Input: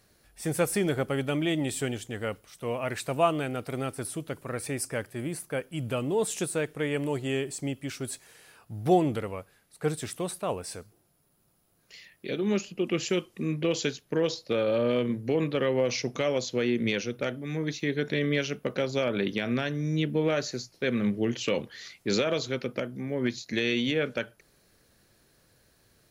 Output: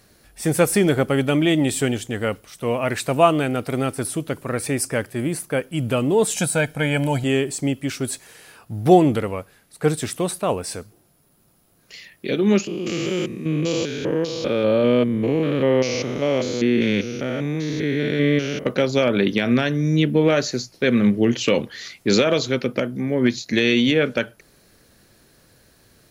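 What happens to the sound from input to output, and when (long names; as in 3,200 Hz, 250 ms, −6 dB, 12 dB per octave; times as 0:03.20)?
0:06.35–0:07.24: comb filter 1.3 ms, depth 81%
0:12.67–0:18.66: spectrum averaged block by block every 200 ms
whole clip: parametric band 250 Hz +2.5 dB 0.77 octaves; level +8.5 dB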